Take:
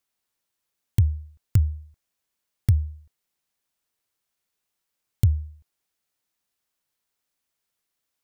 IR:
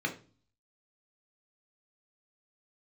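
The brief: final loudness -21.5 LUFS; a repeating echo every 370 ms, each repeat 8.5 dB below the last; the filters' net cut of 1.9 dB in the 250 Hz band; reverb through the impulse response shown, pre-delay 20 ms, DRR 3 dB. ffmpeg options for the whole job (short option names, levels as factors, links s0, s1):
-filter_complex "[0:a]equalizer=f=250:t=o:g=-4.5,aecho=1:1:370|740|1110|1480:0.376|0.143|0.0543|0.0206,asplit=2[s0][s1];[1:a]atrim=start_sample=2205,adelay=20[s2];[s1][s2]afir=irnorm=-1:irlink=0,volume=0.335[s3];[s0][s3]amix=inputs=2:normalize=0,volume=1.78"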